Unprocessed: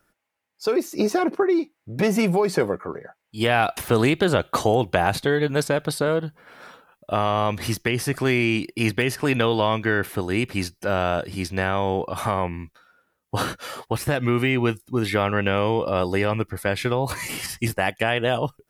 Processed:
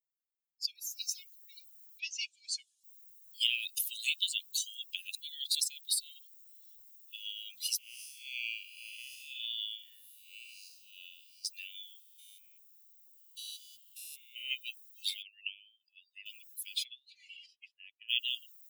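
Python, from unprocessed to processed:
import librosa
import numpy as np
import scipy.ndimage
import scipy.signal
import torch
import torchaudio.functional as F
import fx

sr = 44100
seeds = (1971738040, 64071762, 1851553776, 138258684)

y = fx.noise_floor_step(x, sr, seeds[0], at_s=0.87, before_db=-69, after_db=-50, tilt_db=0.0)
y = fx.lowpass(y, sr, hz=fx.line((1.98, 5700.0), (2.83, 11000.0)), slope=24, at=(1.98, 2.83), fade=0.02)
y = fx.spec_blur(y, sr, span_ms=239.0, at=(7.78, 11.45))
y = fx.spec_steps(y, sr, hold_ms=200, at=(11.99, 14.51))
y = fx.envelope_sharpen(y, sr, power=1.5, at=(15.22, 16.26))
y = fx.lowpass(y, sr, hz=fx.line((16.83, 3600.0), (18.08, 1600.0)), slope=12, at=(16.83, 18.08), fade=0.02)
y = fx.edit(y, sr, fx.reverse_span(start_s=5.15, length_s=0.4), tone=tone)
y = fx.bin_expand(y, sr, power=2.0)
y = scipy.signal.sosfilt(scipy.signal.butter(12, 2700.0, 'highpass', fs=sr, output='sos'), y)
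y = y * 10.0 ** (5.0 / 20.0)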